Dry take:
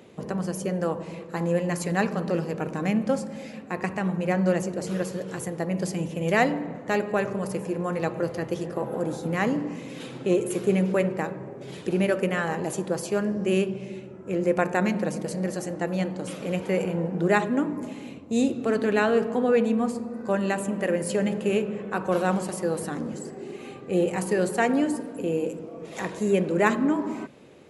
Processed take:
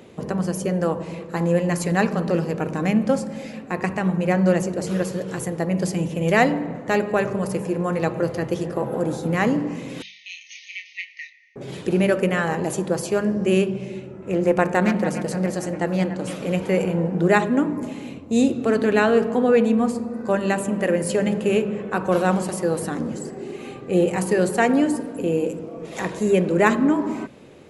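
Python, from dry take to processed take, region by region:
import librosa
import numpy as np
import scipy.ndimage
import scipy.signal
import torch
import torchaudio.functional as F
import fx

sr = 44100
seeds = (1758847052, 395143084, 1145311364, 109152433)

y = fx.chain(x, sr, fx.brickwall_bandpass(low_hz=1800.0, high_hz=6600.0),
    fx.doubler(ms=28.0, db=-6.0), at=(10.02, 11.56))
y = fx.chain(y, sr, fx.echo_wet_bandpass(ms=290, feedback_pct=50, hz=1300.0, wet_db=-10),
    fx.doppler_dist(depth_ms=0.16), at=(13.93, 16.36))
y = fx.low_shelf(y, sr, hz=100.0, db=7.0)
y = fx.hum_notches(y, sr, base_hz=50, count=4)
y = F.gain(torch.from_numpy(y), 4.0).numpy()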